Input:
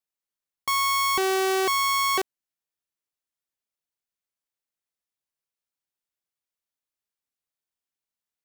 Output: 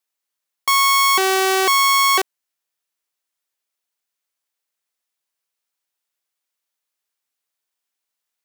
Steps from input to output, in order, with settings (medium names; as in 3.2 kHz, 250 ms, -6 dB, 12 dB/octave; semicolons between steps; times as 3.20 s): high-pass 580 Hz 6 dB/octave; trim +9 dB